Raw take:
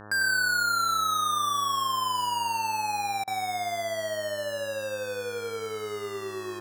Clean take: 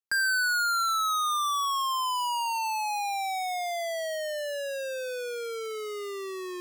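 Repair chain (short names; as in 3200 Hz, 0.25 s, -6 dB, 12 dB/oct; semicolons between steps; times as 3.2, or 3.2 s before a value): de-hum 104.6 Hz, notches 17; interpolate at 3.24, 34 ms; inverse comb 0.1 s -7.5 dB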